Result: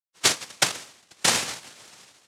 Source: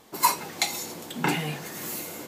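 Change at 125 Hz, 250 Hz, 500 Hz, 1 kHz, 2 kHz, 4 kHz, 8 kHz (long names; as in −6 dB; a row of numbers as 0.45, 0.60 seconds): −7.0, −6.5, +0.5, −5.0, +3.5, +7.0, +6.0 decibels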